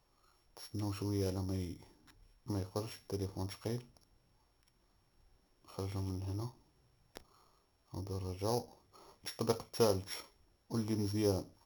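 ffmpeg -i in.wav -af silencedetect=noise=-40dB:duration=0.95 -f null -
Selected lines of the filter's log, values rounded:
silence_start: 3.79
silence_end: 5.78 | silence_duration: 1.99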